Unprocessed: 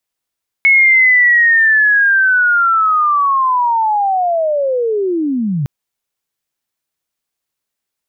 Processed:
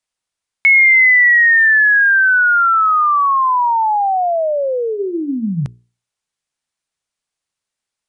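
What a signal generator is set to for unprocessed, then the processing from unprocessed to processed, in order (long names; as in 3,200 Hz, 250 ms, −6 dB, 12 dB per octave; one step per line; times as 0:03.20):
glide linear 2,200 Hz → 130 Hz −5.5 dBFS → −14 dBFS 5.01 s
parametric band 360 Hz −3.5 dB 1.4 octaves
mains-hum notches 60/120/180/240/300/360/420 Hz
downsampling to 22,050 Hz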